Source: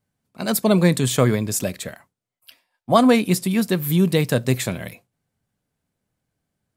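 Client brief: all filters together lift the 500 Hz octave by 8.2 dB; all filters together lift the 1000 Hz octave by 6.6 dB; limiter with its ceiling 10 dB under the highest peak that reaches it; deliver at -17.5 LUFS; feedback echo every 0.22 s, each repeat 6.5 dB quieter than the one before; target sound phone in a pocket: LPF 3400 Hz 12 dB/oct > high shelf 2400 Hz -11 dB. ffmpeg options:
-af "equalizer=f=500:t=o:g=8.5,equalizer=f=1k:t=o:g=7.5,alimiter=limit=-5dB:level=0:latency=1,lowpass=3.4k,highshelf=f=2.4k:g=-11,aecho=1:1:220|440|660|880|1100|1320:0.473|0.222|0.105|0.0491|0.0231|0.0109"

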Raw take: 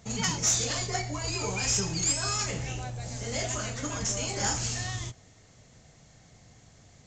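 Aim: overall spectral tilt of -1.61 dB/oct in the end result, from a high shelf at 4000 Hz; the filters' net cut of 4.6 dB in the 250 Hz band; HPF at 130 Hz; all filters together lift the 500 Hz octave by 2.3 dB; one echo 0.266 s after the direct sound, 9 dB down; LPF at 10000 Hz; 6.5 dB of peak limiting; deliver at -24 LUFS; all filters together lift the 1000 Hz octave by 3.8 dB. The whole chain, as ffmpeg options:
-af "highpass=130,lowpass=10k,equalizer=f=250:t=o:g=-7,equalizer=f=500:t=o:g=3.5,equalizer=f=1k:t=o:g=4,highshelf=f=4k:g=4.5,alimiter=limit=-19.5dB:level=0:latency=1,aecho=1:1:266:0.355,volume=4.5dB"

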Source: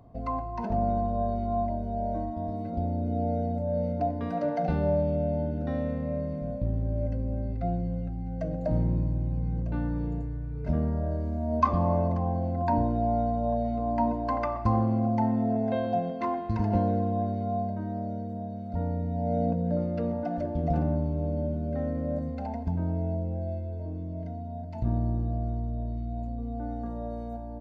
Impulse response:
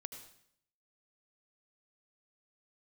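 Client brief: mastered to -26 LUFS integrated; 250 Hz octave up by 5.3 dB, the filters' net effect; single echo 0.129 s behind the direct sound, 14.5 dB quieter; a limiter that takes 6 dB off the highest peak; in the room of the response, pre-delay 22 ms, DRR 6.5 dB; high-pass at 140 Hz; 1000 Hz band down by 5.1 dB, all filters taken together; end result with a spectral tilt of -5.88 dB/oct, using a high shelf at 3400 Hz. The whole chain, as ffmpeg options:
-filter_complex "[0:a]highpass=140,equalizer=f=250:t=o:g=7.5,equalizer=f=1k:t=o:g=-9,highshelf=f=3.4k:g=-6,alimiter=limit=-18dB:level=0:latency=1,aecho=1:1:129:0.188,asplit=2[a][b];[1:a]atrim=start_sample=2205,adelay=22[c];[b][c]afir=irnorm=-1:irlink=0,volume=-3dB[d];[a][d]amix=inputs=2:normalize=0,volume=1dB"

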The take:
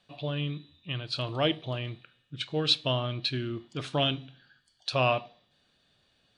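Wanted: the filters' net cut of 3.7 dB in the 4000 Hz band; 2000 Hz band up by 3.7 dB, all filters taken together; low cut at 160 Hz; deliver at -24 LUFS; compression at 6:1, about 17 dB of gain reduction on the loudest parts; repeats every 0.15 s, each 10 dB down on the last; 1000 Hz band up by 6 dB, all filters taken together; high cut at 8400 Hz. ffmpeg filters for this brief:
-af "highpass=160,lowpass=8.4k,equalizer=f=1k:t=o:g=6.5,equalizer=f=2k:t=o:g=8,equalizer=f=4k:t=o:g=-8.5,acompressor=threshold=-36dB:ratio=6,aecho=1:1:150|300|450|600:0.316|0.101|0.0324|0.0104,volume=16.5dB"

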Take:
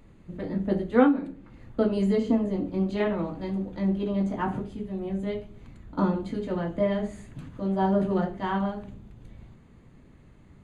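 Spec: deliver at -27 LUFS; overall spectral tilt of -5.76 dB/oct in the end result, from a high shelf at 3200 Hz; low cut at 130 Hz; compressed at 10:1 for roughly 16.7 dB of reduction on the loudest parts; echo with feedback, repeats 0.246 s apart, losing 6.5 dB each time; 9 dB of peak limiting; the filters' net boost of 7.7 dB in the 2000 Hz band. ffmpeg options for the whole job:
-af "highpass=130,equalizer=f=2k:t=o:g=8,highshelf=f=3.2k:g=7,acompressor=threshold=-30dB:ratio=10,alimiter=level_in=4.5dB:limit=-24dB:level=0:latency=1,volume=-4.5dB,aecho=1:1:246|492|738|984|1230|1476:0.473|0.222|0.105|0.0491|0.0231|0.0109,volume=10dB"

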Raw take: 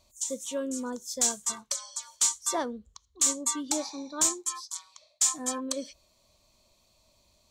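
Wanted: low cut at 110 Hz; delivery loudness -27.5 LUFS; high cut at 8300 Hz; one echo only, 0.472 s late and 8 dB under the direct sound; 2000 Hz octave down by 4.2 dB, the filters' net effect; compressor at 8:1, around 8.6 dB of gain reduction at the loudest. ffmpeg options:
-af "highpass=110,lowpass=8.3k,equalizer=f=2k:t=o:g=-5.5,acompressor=threshold=-31dB:ratio=8,aecho=1:1:472:0.398,volume=8dB"

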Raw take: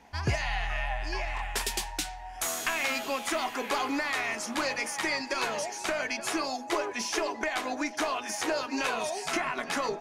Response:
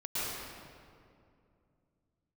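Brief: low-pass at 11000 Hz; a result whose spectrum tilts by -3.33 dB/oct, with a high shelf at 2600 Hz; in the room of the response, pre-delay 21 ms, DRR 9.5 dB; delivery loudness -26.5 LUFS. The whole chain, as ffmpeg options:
-filter_complex "[0:a]lowpass=11k,highshelf=f=2.6k:g=-3.5,asplit=2[a][b];[1:a]atrim=start_sample=2205,adelay=21[c];[b][c]afir=irnorm=-1:irlink=0,volume=-16dB[d];[a][d]amix=inputs=2:normalize=0,volume=5dB"

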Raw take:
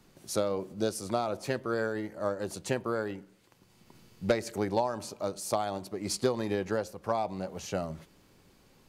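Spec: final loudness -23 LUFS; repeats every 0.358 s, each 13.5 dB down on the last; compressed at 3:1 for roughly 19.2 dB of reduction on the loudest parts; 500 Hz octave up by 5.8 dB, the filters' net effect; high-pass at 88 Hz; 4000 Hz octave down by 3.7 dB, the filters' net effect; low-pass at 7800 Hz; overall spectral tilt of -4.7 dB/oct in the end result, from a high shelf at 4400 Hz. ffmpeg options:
-af "highpass=88,lowpass=7.8k,equalizer=f=500:t=o:g=7,equalizer=f=4k:t=o:g=-6.5,highshelf=f=4.4k:g=3.5,acompressor=threshold=-44dB:ratio=3,aecho=1:1:358|716:0.211|0.0444,volume=20.5dB"

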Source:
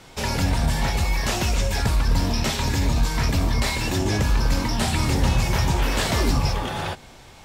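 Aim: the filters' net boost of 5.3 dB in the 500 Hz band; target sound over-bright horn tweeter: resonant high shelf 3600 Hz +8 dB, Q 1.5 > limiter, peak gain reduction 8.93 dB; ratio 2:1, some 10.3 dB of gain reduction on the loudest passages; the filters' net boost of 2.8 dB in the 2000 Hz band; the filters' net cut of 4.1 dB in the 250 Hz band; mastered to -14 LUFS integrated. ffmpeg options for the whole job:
-af "equalizer=f=250:t=o:g=-8.5,equalizer=f=500:t=o:g=9,equalizer=f=2k:t=o:g=5,acompressor=threshold=-35dB:ratio=2,highshelf=f=3.6k:t=q:w=1.5:g=8,volume=19.5dB,alimiter=limit=-5.5dB:level=0:latency=1"

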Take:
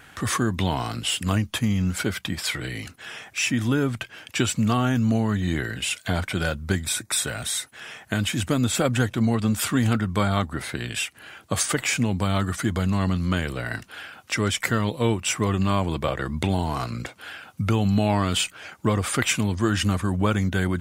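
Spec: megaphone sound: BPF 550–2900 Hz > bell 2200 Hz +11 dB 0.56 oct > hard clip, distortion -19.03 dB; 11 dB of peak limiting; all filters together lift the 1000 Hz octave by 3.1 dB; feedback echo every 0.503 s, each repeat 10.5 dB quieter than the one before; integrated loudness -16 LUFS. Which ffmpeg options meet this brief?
-af "equalizer=f=1k:t=o:g=3.5,alimiter=limit=-16.5dB:level=0:latency=1,highpass=550,lowpass=2.9k,equalizer=f=2.2k:t=o:w=0.56:g=11,aecho=1:1:503|1006|1509:0.299|0.0896|0.0269,asoftclip=type=hard:threshold=-18.5dB,volume=13dB"

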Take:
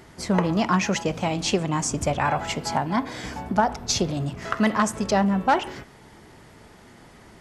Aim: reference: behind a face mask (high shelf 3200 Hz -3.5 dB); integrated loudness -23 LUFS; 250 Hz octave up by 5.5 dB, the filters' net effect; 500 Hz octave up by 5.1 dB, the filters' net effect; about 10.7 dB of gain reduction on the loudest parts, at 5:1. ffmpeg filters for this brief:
-af "equalizer=f=250:t=o:g=6.5,equalizer=f=500:t=o:g=5,acompressor=threshold=-24dB:ratio=5,highshelf=f=3.2k:g=-3.5,volume=5.5dB"

